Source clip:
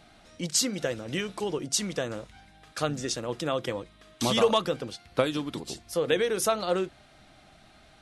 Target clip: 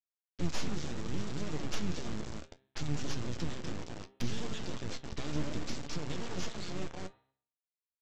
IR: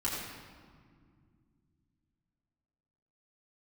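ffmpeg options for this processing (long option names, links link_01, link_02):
-filter_complex "[0:a]agate=range=-33dB:threshold=-51dB:ratio=3:detection=peak,acompressor=threshold=-37dB:ratio=3,firequalizer=gain_entry='entry(160,0);entry(330,-4);entry(680,-29);entry(1900,-16);entry(3000,-12);entry(5600,1)':delay=0.05:min_phase=1,asplit=2[link_01][link_02];[link_02]adelay=220,lowpass=frequency=1300:poles=1,volume=-6.5dB,asplit=2[link_03][link_04];[link_04]adelay=220,lowpass=frequency=1300:poles=1,volume=0.3,asplit=2[link_05][link_06];[link_06]adelay=220,lowpass=frequency=1300:poles=1,volume=0.3,asplit=2[link_07][link_08];[link_08]adelay=220,lowpass=frequency=1300:poles=1,volume=0.3[link_09];[link_01][link_03][link_05][link_07][link_09]amix=inputs=5:normalize=0,aresample=16000,acrusher=bits=5:dc=4:mix=0:aa=0.000001,aresample=44100,bandreject=frequency=132.5:width_type=h:width=4,bandreject=frequency=265:width_type=h:width=4,bandreject=frequency=397.5:width_type=h:width=4,bandreject=frequency=530:width_type=h:width=4,bandreject=frequency=662.5:width_type=h:width=4,bandreject=frequency=795:width_type=h:width=4,bandreject=frequency=927.5:width_type=h:width=4,bandreject=frequency=1060:width_type=h:width=4,bandreject=frequency=1192.5:width_type=h:width=4,bandreject=frequency=1325:width_type=h:width=4,bandreject=frequency=1457.5:width_type=h:width=4,bandreject=frequency=1590:width_type=h:width=4,bandreject=frequency=1722.5:width_type=h:width=4,bandreject=frequency=1855:width_type=h:width=4,bandreject=frequency=1987.5:width_type=h:width=4,bandreject=frequency=2120:width_type=h:width=4,bandreject=frequency=2252.5:width_type=h:width=4,bandreject=frequency=2385:width_type=h:width=4,bandreject=frequency=2517.5:width_type=h:width=4,bandreject=frequency=2650:width_type=h:width=4,bandreject=frequency=2782.5:width_type=h:width=4,bandreject=frequency=2915:width_type=h:width=4,bandreject=frequency=3047.5:width_type=h:width=4,bandreject=frequency=3180:width_type=h:width=4,bandreject=frequency=3312.5:width_type=h:width=4,bandreject=frequency=3445:width_type=h:width=4,bandreject=frequency=3577.5:width_type=h:width=4,bandreject=frequency=3710:width_type=h:width=4,bandreject=frequency=3842.5:width_type=h:width=4,bandreject=frequency=3975:width_type=h:width=4,bandreject=frequency=4107.5:width_type=h:width=4,asplit=2[link_10][link_11];[1:a]atrim=start_sample=2205,atrim=end_sample=3087,highshelf=frequency=2100:gain=-3[link_12];[link_11][link_12]afir=irnorm=-1:irlink=0,volume=-24dB[link_13];[link_10][link_13]amix=inputs=2:normalize=0,acrossover=split=4500[link_14][link_15];[link_15]acompressor=threshold=-54dB:ratio=4:attack=1:release=60[link_16];[link_14][link_16]amix=inputs=2:normalize=0,asoftclip=type=tanh:threshold=-34dB,asplit=3[link_17][link_18][link_19];[link_18]asetrate=22050,aresample=44100,atempo=2,volume=-6dB[link_20];[link_19]asetrate=35002,aresample=44100,atempo=1.25992,volume=-7dB[link_21];[link_17][link_20][link_21]amix=inputs=3:normalize=0,flanger=delay=6.6:depth=7.5:regen=57:speed=0.67:shape=sinusoidal,volume=12dB"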